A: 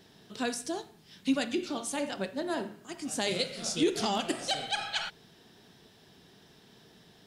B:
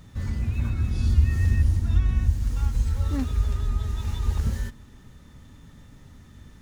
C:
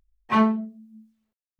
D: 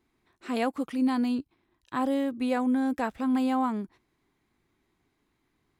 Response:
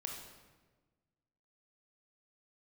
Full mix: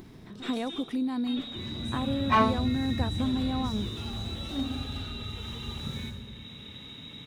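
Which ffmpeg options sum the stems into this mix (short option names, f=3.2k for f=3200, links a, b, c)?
-filter_complex "[0:a]lowshelf=f=450:g=11,asoftclip=type=hard:threshold=-30dB,volume=-4.5dB,asplit=2[a][b];[b]volume=-10.5dB[c];[1:a]highpass=170,adelay=1400,volume=2.5dB,asplit=2[d][e];[e]volume=-8dB[f];[2:a]highpass=560,adelay=2000,volume=-0.5dB[g];[3:a]acompressor=threshold=-36dB:ratio=6,volume=2.5dB,asplit=2[h][i];[i]apad=whole_len=320495[j];[a][j]sidechaingate=range=-33dB:threshold=-59dB:ratio=16:detection=peak[k];[k][d]amix=inputs=2:normalize=0,lowpass=f=3.4k:t=q:w=0.5098,lowpass=f=3.4k:t=q:w=0.6013,lowpass=f=3.4k:t=q:w=0.9,lowpass=f=3.4k:t=q:w=2.563,afreqshift=-4000,alimiter=level_in=11.5dB:limit=-24dB:level=0:latency=1,volume=-11.5dB,volume=0dB[l];[4:a]atrim=start_sample=2205[m];[c][f]amix=inputs=2:normalize=0[n];[n][m]afir=irnorm=-1:irlink=0[o];[g][h][l][o]amix=inputs=4:normalize=0,lowshelf=f=420:g=7.5,acompressor=mode=upward:threshold=-37dB:ratio=2.5"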